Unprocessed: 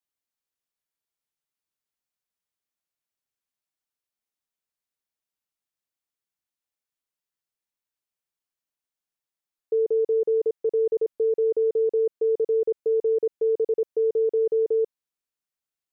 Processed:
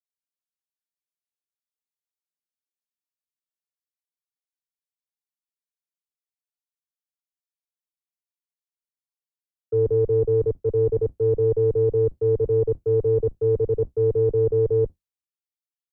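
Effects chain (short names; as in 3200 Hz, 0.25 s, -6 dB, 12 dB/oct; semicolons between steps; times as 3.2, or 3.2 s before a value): octaver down 2 oct, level +1 dB; three-band expander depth 100%; gain +2 dB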